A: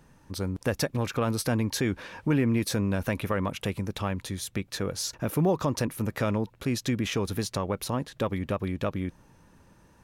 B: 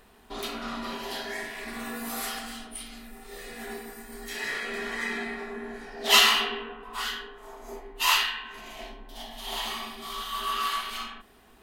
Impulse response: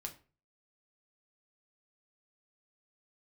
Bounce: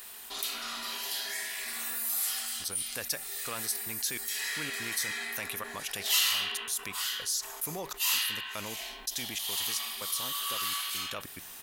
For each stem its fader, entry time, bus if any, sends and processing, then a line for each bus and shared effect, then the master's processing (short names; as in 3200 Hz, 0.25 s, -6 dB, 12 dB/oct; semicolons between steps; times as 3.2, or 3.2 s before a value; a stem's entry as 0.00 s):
-5.0 dB, 2.30 s, send -16.5 dB, step gate "..xxx.xxx" 144 bpm -60 dB
-3.0 dB, 0.00 s, no send, dry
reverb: on, RT60 0.35 s, pre-delay 6 ms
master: pre-emphasis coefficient 0.97; fast leveller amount 50%